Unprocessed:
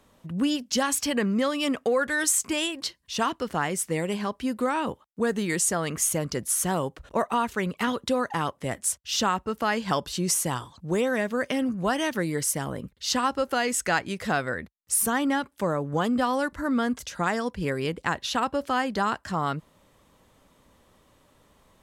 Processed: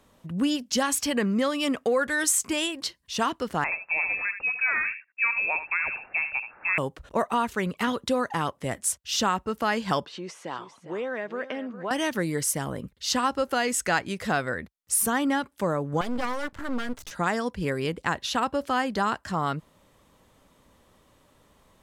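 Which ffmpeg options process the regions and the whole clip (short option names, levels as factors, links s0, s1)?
-filter_complex "[0:a]asettb=1/sr,asplit=3[s0][s1][s2];[s0]atrim=end=3.644[s3];[s1]atrim=start=3.64:end=6.78,asetpts=PTS-STARTPTS,afade=t=in:d=0.004:c=qsin,afade=t=out:st=3.136:d=0.004:c=qsin,aecho=1:1:76:0.299,atrim=end_sample=138474,lowpass=f=2400:t=q:w=0.5098,lowpass=f=2400:t=q:w=0.6013,lowpass=f=2400:t=q:w=0.9,lowpass=f=2400:t=q:w=2.563,afreqshift=-2800[s4];[s2]atrim=start=6.776[s5];[s3][s4]acrossfade=d=0.004:c1=hsin:c2=qsin[s6];[s6][s5]acrossfade=d=0.004:c1=qsin:c2=hsin,asettb=1/sr,asplit=3[s7][s8][s9];[s7]atrim=end=10.054[s10];[s8]atrim=start=10.05:end=11.91,asetpts=PTS-STARTPTS,afade=t=in:d=0.004:c=qsin,afade=t=out:st=1.856:d=0.004:c=qsin,acompressor=threshold=0.0398:ratio=2:attack=3.2:release=140:knee=1:detection=peak,highpass=330,lowpass=2700,aecho=1:1:402:0.224,atrim=end_sample=82026[s11];[s9]atrim=start=11.906[s12];[s10][s11]acrossfade=d=0.004:c1=hsin:c2=qsin[s13];[s13][s12]acrossfade=d=0.004:c1=qsin:c2=hsin,asettb=1/sr,asplit=3[s14][s15][s16];[s14]atrim=end=16.014[s17];[s15]atrim=start=16.01:end=17.11,asetpts=PTS-STARTPTS,afade=t=in:d=0.004:c=qsin,afade=t=out:st=1.096:d=0.004:c=qsin,equalizer=f=11000:t=o:w=0.34:g=-5,aeval=exprs='max(val(0),0)':c=same[s18];[s16]atrim=start=17.106[s19];[s17][s18]acrossfade=d=0.004:c1=hsin:c2=qsin[s20];[s20][s19]acrossfade=d=0.004:c1=qsin:c2=hsin"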